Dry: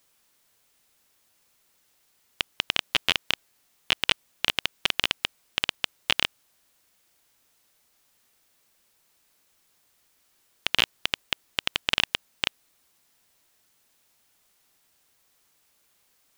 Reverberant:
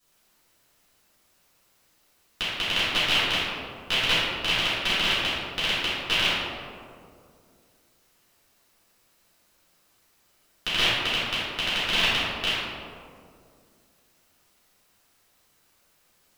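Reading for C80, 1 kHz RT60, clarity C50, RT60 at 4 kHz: -1.0 dB, 2.0 s, -4.0 dB, 0.95 s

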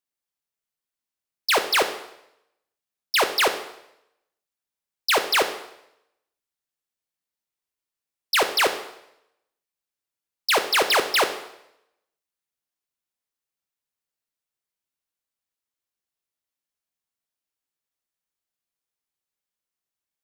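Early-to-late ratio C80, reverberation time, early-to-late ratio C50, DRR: 13.0 dB, 0.80 s, 10.0 dB, 7.0 dB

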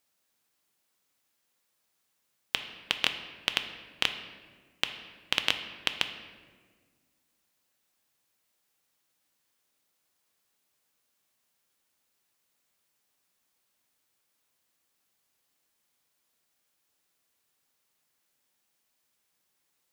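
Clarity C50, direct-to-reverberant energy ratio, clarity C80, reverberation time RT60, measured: 9.5 dB, 7.0 dB, 11.0 dB, 1.6 s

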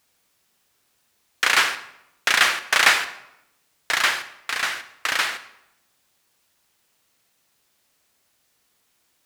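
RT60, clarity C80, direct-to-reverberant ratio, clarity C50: 0.85 s, 15.0 dB, 11.0 dB, 12.5 dB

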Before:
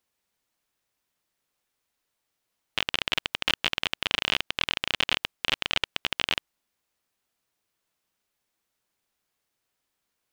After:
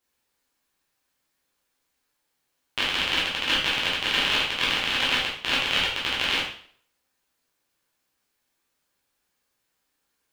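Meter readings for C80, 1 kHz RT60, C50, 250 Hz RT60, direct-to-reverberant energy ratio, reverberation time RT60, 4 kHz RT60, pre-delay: 7.5 dB, 0.55 s, 3.5 dB, 0.60 s, -7.0 dB, 0.55 s, 0.50 s, 5 ms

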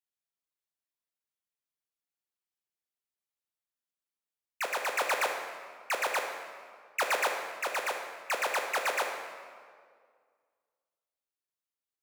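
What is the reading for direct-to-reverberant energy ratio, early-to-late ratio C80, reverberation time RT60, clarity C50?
2.5 dB, 6.0 dB, 2.0 s, 4.5 dB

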